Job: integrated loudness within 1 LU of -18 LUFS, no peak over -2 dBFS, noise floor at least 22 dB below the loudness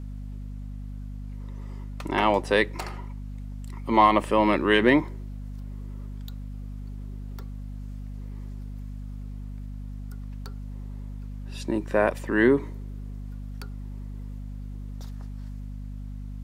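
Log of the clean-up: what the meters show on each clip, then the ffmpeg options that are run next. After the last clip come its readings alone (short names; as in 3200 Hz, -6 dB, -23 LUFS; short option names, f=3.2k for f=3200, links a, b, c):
hum 50 Hz; harmonics up to 250 Hz; hum level -33 dBFS; loudness -23.0 LUFS; peak -4.5 dBFS; loudness target -18.0 LUFS
-> -af "bandreject=f=50:t=h:w=4,bandreject=f=100:t=h:w=4,bandreject=f=150:t=h:w=4,bandreject=f=200:t=h:w=4,bandreject=f=250:t=h:w=4"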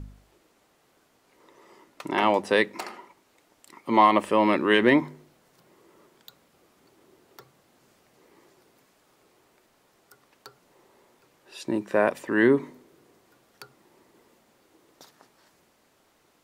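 hum none; loudness -22.5 LUFS; peak -4.5 dBFS; loudness target -18.0 LUFS
-> -af "volume=4.5dB,alimiter=limit=-2dB:level=0:latency=1"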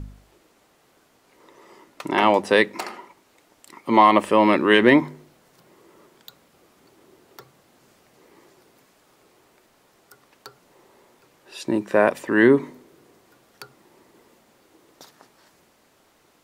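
loudness -18.5 LUFS; peak -2.0 dBFS; noise floor -61 dBFS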